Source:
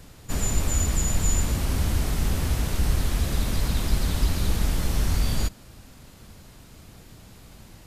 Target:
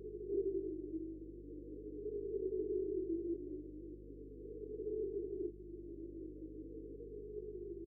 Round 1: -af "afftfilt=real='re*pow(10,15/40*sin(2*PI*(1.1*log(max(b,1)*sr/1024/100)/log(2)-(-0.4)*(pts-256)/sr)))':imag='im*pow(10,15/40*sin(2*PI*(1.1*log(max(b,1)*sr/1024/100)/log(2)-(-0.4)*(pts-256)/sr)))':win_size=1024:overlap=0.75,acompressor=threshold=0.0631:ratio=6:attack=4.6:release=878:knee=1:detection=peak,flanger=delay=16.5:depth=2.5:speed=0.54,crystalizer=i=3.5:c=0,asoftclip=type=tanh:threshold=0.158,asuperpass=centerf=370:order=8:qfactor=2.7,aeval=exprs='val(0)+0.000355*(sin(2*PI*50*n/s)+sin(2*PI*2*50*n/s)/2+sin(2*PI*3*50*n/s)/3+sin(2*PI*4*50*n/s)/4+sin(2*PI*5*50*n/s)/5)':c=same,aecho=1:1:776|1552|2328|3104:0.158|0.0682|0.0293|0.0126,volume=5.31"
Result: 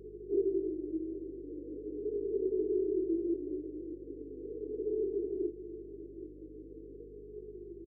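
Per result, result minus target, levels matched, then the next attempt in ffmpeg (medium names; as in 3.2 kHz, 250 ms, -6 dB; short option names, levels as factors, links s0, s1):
echo-to-direct +11.5 dB; compression: peak gain reduction -7.5 dB
-af "afftfilt=real='re*pow(10,15/40*sin(2*PI*(1.1*log(max(b,1)*sr/1024/100)/log(2)-(-0.4)*(pts-256)/sr)))':imag='im*pow(10,15/40*sin(2*PI*(1.1*log(max(b,1)*sr/1024/100)/log(2)-(-0.4)*(pts-256)/sr)))':win_size=1024:overlap=0.75,acompressor=threshold=0.0631:ratio=6:attack=4.6:release=878:knee=1:detection=peak,flanger=delay=16.5:depth=2.5:speed=0.54,crystalizer=i=3.5:c=0,asoftclip=type=tanh:threshold=0.158,asuperpass=centerf=370:order=8:qfactor=2.7,aeval=exprs='val(0)+0.000355*(sin(2*PI*50*n/s)+sin(2*PI*2*50*n/s)/2+sin(2*PI*3*50*n/s)/3+sin(2*PI*4*50*n/s)/4+sin(2*PI*5*50*n/s)/5)':c=same,aecho=1:1:776|1552:0.0422|0.0181,volume=5.31"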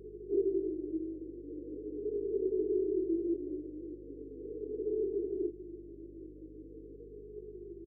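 compression: peak gain reduction -7.5 dB
-af "afftfilt=real='re*pow(10,15/40*sin(2*PI*(1.1*log(max(b,1)*sr/1024/100)/log(2)-(-0.4)*(pts-256)/sr)))':imag='im*pow(10,15/40*sin(2*PI*(1.1*log(max(b,1)*sr/1024/100)/log(2)-(-0.4)*(pts-256)/sr)))':win_size=1024:overlap=0.75,acompressor=threshold=0.0224:ratio=6:attack=4.6:release=878:knee=1:detection=peak,flanger=delay=16.5:depth=2.5:speed=0.54,crystalizer=i=3.5:c=0,asoftclip=type=tanh:threshold=0.158,asuperpass=centerf=370:order=8:qfactor=2.7,aeval=exprs='val(0)+0.000355*(sin(2*PI*50*n/s)+sin(2*PI*2*50*n/s)/2+sin(2*PI*3*50*n/s)/3+sin(2*PI*4*50*n/s)/4+sin(2*PI*5*50*n/s)/5)':c=same,aecho=1:1:776|1552:0.0422|0.0181,volume=5.31"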